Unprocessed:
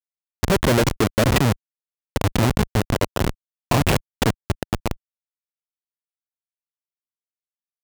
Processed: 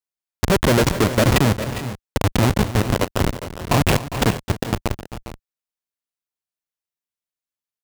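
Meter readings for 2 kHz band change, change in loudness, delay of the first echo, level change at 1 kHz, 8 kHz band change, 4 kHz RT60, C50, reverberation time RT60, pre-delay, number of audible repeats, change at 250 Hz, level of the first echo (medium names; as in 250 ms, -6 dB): +2.0 dB, +1.5 dB, 261 ms, +2.0 dB, +2.0 dB, no reverb, no reverb, no reverb, no reverb, 2, +2.0 dB, -15.0 dB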